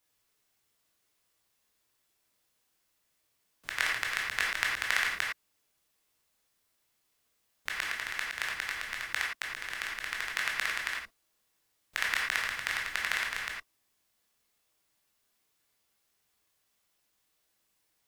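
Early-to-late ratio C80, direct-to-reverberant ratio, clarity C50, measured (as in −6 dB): 5.0 dB, −3.0 dB, 2.0 dB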